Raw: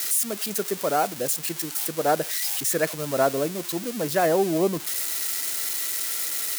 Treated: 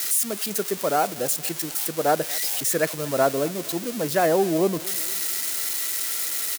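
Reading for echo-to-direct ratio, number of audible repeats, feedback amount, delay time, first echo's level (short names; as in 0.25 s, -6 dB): -19.5 dB, 3, 51%, 0.235 s, -21.0 dB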